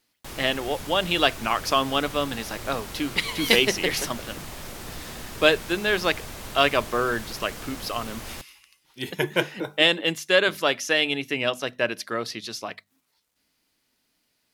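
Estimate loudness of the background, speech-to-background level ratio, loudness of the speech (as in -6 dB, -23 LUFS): -37.5 LUFS, 13.5 dB, -24.0 LUFS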